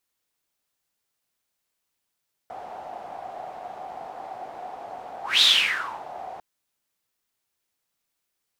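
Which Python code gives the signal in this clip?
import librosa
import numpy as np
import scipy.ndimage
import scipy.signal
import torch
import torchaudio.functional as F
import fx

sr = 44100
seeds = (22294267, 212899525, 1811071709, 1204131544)

y = fx.whoosh(sr, seeds[0], length_s=3.9, peak_s=2.91, rise_s=0.19, fall_s=0.69, ends_hz=740.0, peak_hz=3700.0, q=8.8, swell_db=21)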